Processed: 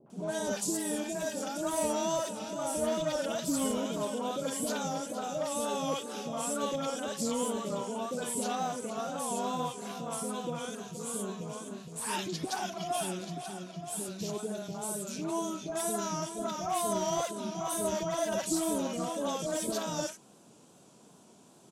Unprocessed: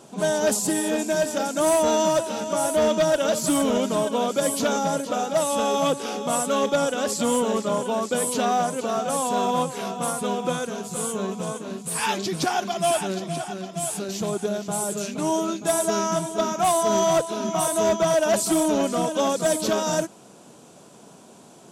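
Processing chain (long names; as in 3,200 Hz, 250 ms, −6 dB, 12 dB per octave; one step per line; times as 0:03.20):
tape wow and flutter 69 cents
three-band delay without the direct sound lows, mids, highs 60/100 ms, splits 600/1,800 Hz
level −8.5 dB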